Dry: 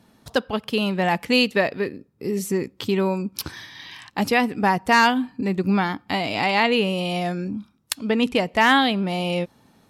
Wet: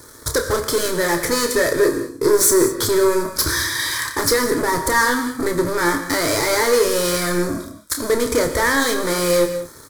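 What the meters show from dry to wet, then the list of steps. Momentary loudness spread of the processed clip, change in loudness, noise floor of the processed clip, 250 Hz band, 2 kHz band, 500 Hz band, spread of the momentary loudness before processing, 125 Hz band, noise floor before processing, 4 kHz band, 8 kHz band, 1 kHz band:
5 LU, +3.5 dB, -42 dBFS, 0.0 dB, +2.5 dB, +7.0 dB, 15 LU, -0.5 dB, -59 dBFS, +2.5 dB, +17.5 dB, -0.5 dB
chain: CVSD 64 kbps; high shelf 3700 Hz +8.5 dB; limiter -17.5 dBFS, peak gain reduction 12 dB; sample leveller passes 3; fixed phaser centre 750 Hz, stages 6; doubler 29 ms -7.5 dB; non-linear reverb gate 0.23 s flat, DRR 8 dB; gain +8 dB

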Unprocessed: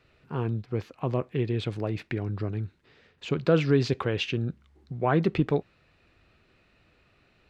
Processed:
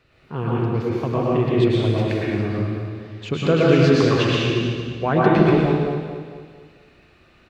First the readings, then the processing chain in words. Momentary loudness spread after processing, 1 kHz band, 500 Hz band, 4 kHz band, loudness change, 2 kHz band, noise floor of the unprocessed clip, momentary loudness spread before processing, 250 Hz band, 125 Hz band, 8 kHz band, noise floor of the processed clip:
14 LU, +10.0 dB, +9.5 dB, +9.0 dB, +8.5 dB, +9.5 dB, -65 dBFS, 11 LU, +10.0 dB, +8.0 dB, n/a, -55 dBFS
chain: feedback echo 0.225 s, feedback 42%, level -9 dB; plate-style reverb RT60 1.4 s, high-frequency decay 0.9×, pre-delay 95 ms, DRR -5.5 dB; gain +2.5 dB

